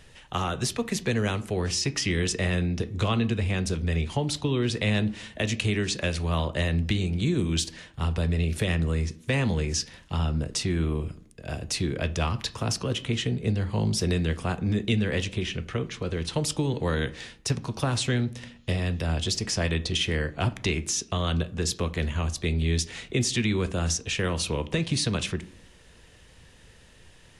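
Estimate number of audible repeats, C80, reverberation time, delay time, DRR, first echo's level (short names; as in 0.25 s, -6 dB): none, 22.0 dB, 0.60 s, none, 11.5 dB, none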